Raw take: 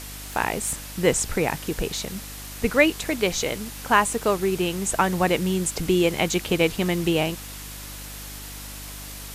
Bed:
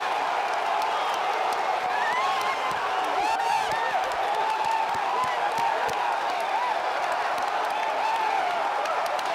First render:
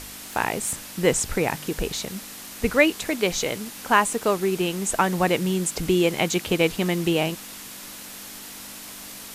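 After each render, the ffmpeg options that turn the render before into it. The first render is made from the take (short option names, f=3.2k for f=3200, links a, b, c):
-af "bandreject=f=50:t=h:w=4,bandreject=f=100:t=h:w=4,bandreject=f=150:t=h:w=4"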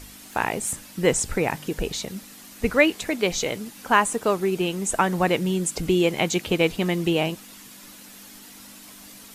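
-af "afftdn=nr=8:nf=-40"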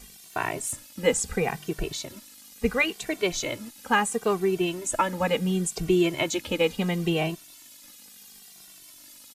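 -filter_complex "[0:a]acrossover=split=2600[a][b];[a]aeval=exprs='sgn(val(0))*max(abs(val(0))-0.00355,0)':c=same[c];[c][b]amix=inputs=2:normalize=0,asplit=2[d][e];[e]adelay=2.1,afreqshift=-0.72[f];[d][f]amix=inputs=2:normalize=1"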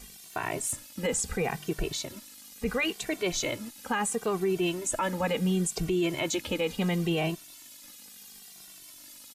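-af "alimiter=limit=-19.5dB:level=0:latency=1:release=23"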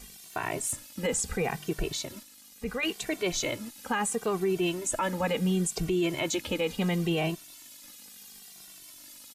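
-filter_complex "[0:a]asplit=3[a][b][c];[a]atrim=end=2.232[d];[b]atrim=start=2.228:end=2.832,asetpts=PTS-STARTPTS,volume=-4dB[e];[c]atrim=start=2.828[f];[d][e]acrossfade=d=0.004:c1=hsin:c2=hsin[g];[g][f]acrossfade=d=0.004:c1=hsin:c2=hsin"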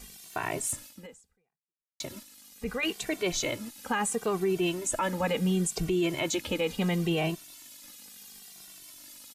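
-filter_complex "[0:a]asplit=2[a][b];[a]atrim=end=2,asetpts=PTS-STARTPTS,afade=t=out:st=0.87:d=1.13:c=exp[c];[b]atrim=start=2,asetpts=PTS-STARTPTS,afade=t=in:d=0.004:c=hsin[d];[c][d]concat=n=2:v=0:a=1"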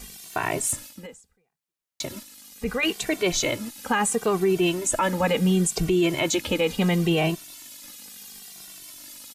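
-af "volume=6dB"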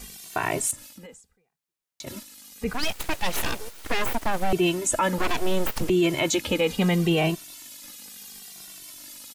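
-filter_complex "[0:a]asettb=1/sr,asplit=3[a][b][c];[a]atrim=end=0.714[d];[b]atrim=start=0.71:end=2.07,asetpts=PTS-STARTPTS,afade=t=in:d=0.004:c=qsin,afade=t=out:st=1.356:d=0.004:c=qsin,acompressor=threshold=-42dB:ratio=2:attack=3.2:release=140:knee=1:detection=peak[e];[c]atrim=start=2.066[f];[d][e]acrossfade=d=0.004:c1=hsin:c2=qsin[g];[g][f]acrossfade=d=0.004:c1=qsin:c2=hsin,asettb=1/sr,asplit=3[h][i][j];[h]atrim=end=2.734[k];[i]atrim=start=2.73:end=4.53,asetpts=PTS-STARTPTS,afade=t=in:d=0.004:c=qsin,afade=t=out:st=1.796:d=0.004:c=qsin,aeval=exprs='abs(val(0))':c=same[l];[j]atrim=start=4.526[m];[k][l]acrossfade=d=0.004:c1=hsin:c2=qsin[n];[n][m]acrossfade=d=0.004:c1=qsin:c2=hsin,asettb=1/sr,asplit=3[o][p][q];[o]atrim=end=5.184[r];[p]atrim=start=5.18:end=5.9,asetpts=PTS-STARTPTS,afade=t=in:d=0.004:c=qsin,afade=t=out:st=0.716:d=0.004:c=qsin,aeval=exprs='abs(val(0))':c=same[s];[q]atrim=start=5.896[t];[r][s]acrossfade=d=0.004:c1=hsin:c2=qsin[u];[u][t]acrossfade=d=0.004:c1=qsin:c2=hsin"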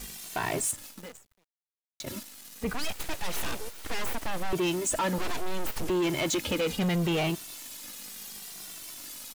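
-af "acrusher=bits=8:dc=4:mix=0:aa=0.000001,asoftclip=type=tanh:threshold=-23.5dB"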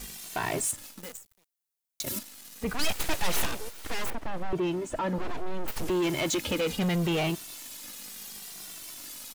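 -filter_complex "[0:a]asettb=1/sr,asplit=3[a][b][c];[a]atrim=end=1.034[d];[b]atrim=start=1.03:end=2.19,asetpts=PTS-STARTPTS,afade=t=in:d=0.004:c=qsin,afade=t=out:st=1.156:d=0.004:c=qsin,highshelf=f=5.7k:g=12[e];[c]atrim=start=2.186[f];[d][e]acrossfade=d=0.004:c1=hsin:c2=qsin[g];[g][f]acrossfade=d=0.004:c1=qsin:c2=hsin,asettb=1/sr,asplit=3[h][i][j];[h]atrim=end=2.794[k];[i]atrim=start=2.79:end=3.46,asetpts=PTS-STARTPTS,afade=t=in:d=0.004:c=qsin,afade=t=out:st=0.666:d=0.004:c=qsin,acontrast=33[l];[j]atrim=start=3.456[m];[k][l]acrossfade=d=0.004:c1=hsin:c2=qsin[n];[n][m]acrossfade=d=0.004:c1=qsin:c2=hsin,asettb=1/sr,asplit=3[o][p][q];[o]atrim=end=4.104[r];[p]atrim=start=4.1:end=5.68,asetpts=PTS-STARTPTS,afade=t=in:d=0.004:c=qsin,afade=t=out:st=1.576:d=0.004:c=qsin,lowpass=f=1.2k:p=1[s];[q]atrim=start=5.676[t];[r][s]acrossfade=d=0.004:c1=hsin:c2=qsin[u];[u][t]acrossfade=d=0.004:c1=qsin:c2=hsin"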